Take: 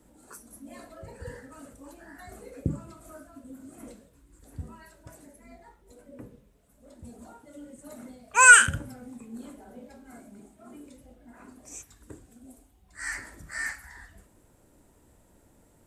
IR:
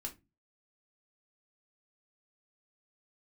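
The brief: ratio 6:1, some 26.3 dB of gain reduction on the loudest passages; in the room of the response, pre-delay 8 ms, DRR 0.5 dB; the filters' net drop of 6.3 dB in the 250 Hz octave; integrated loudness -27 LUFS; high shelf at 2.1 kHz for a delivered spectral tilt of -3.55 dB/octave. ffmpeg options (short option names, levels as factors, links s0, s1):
-filter_complex "[0:a]equalizer=f=250:t=o:g=-8.5,highshelf=f=2100:g=7,acompressor=threshold=0.0178:ratio=6,asplit=2[s0][s1];[1:a]atrim=start_sample=2205,adelay=8[s2];[s1][s2]afir=irnorm=-1:irlink=0,volume=1.26[s3];[s0][s3]amix=inputs=2:normalize=0,volume=5.01"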